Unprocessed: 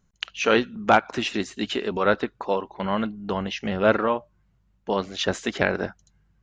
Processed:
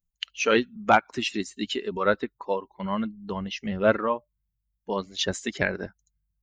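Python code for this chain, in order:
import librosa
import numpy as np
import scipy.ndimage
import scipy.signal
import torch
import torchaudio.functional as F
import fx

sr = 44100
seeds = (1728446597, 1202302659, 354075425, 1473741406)

y = fx.bin_expand(x, sr, power=1.5)
y = fx.high_shelf(y, sr, hz=6600.0, db=8.0)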